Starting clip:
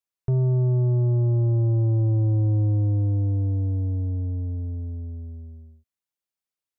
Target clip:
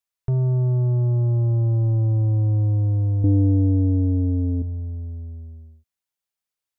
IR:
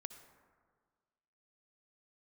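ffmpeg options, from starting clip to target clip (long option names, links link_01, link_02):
-af "asetnsamples=nb_out_samples=441:pad=0,asendcmd='3.24 equalizer g 10.5;4.62 equalizer g -4.5',equalizer=frequency=290:width_type=o:width=1.8:gain=-6,volume=3dB"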